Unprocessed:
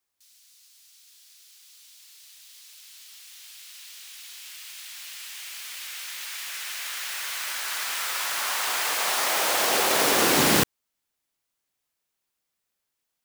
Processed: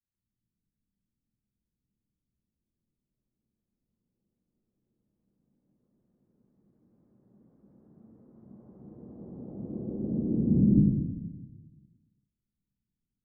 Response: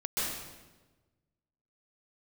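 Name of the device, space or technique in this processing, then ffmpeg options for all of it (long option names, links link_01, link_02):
club heard from the street: -filter_complex "[0:a]alimiter=limit=-14dB:level=0:latency=1,lowpass=frequency=220:width=0.5412,lowpass=frequency=220:width=1.3066[link_01];[1:a]atrim=start_sample=2205[link_02];[link_01][link_02]afir=irnorm=-1:irlink=0,volume=5.5dB"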